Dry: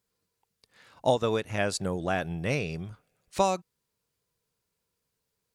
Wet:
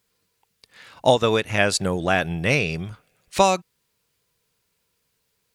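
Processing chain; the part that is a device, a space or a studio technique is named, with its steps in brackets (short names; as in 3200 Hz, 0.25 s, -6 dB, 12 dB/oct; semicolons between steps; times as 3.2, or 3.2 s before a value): presence and air boost (bell 2600 Hz +5.5 dB 1.8 oct; high shelf 9200 Hz +4 dB); gain +6.5 dB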